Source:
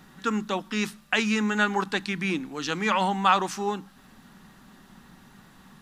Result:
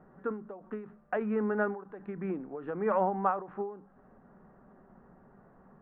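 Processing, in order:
inverse Chebyshev low-pass filter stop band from 4,800 Hz, stop band 60 dB
flat-topped bell 520 Hz +9.5 dB 1.1 octaves
every ending faded ahead of time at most 110 dB per second
level −6.5 dB

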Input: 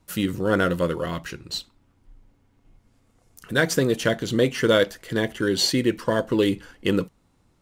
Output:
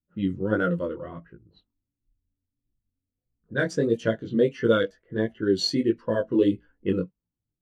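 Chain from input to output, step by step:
chorus effect 1.5 Hz, delay 17 ms, depth 5.1 ms
low-pass that shuts in the quiet parts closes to 560 Hz, open at −20.5 dBFS
every bin expanded away from the loudest bin 1.5 to 1

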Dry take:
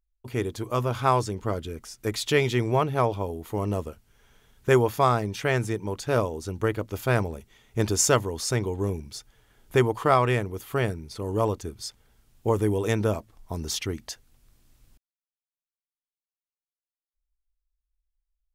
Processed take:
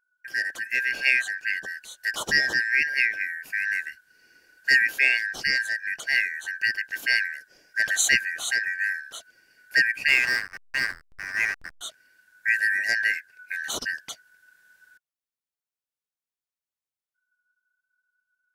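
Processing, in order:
band-splitting scrambler in four parts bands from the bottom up 3142
0:10.08–0:11.81: slack as between gear wheels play −24.5 dBFS

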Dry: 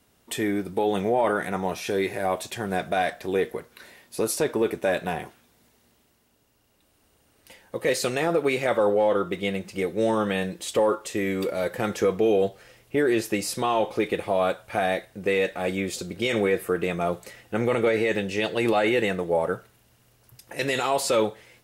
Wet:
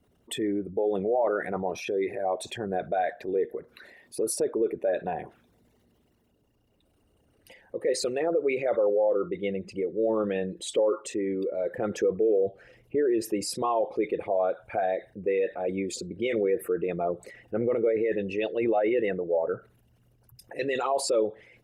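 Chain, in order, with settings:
spectral envelope exaggerated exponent 2
level −2.5 dB
Opus 64 kbit/s 48,000 Hz

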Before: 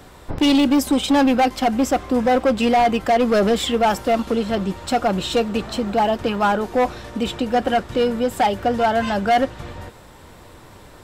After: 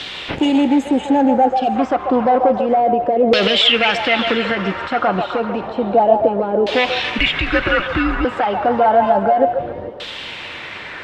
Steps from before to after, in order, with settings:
0:00.35–0:01.56: gain on a spectral selection 950–6,300 Hz −23 dB
meter weighting curve D
0:01.48–0:01.76: time-frequency box erased 820–2,300 Hz
high-shelf EQ 3,700 Hz +8.5 dB
in parallel at −3 dB: downward compressor, threshold −25 dBFS, peak gain reduction 17.5 dB
on the sum: brickwall limiter −8.5 dBFS, peak gain reduction 11.5 dB
background noise white −39 dBFS
auto-filter low-pass saw down 0.3 Hz 460–3,400 Hz
0:07.18–0:08.25: frequency shifter −190 Hz
echo through a band-pass that steps 140 ms, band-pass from 690 Hz, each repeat 0.7 octaves, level −4 dB
level +1.5 dB

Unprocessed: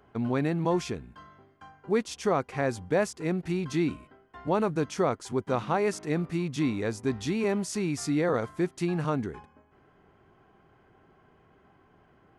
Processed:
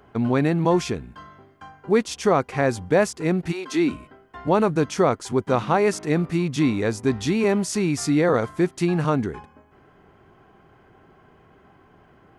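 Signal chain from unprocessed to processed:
0:03.51–0:03.91: high-pass filter 500 Hz → 170 Hz 24 dB per octave
level +7 dB

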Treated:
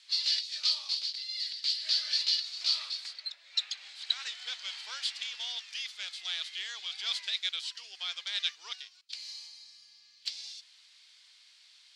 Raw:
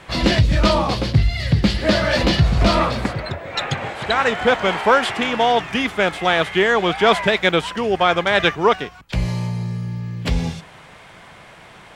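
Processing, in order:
four-pole ladder band-pass 5,000 Hz, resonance 60%
level +3.5 dB

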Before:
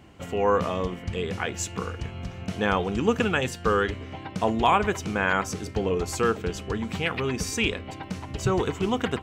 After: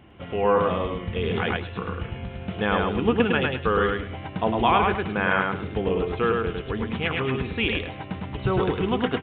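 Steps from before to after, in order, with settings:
downsampling to 8,000 Hz
on a send: repeating echo 105 ms, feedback 23%, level −3 dB
0:01.16–0:01.57: on the sum: envelope flattener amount 100%

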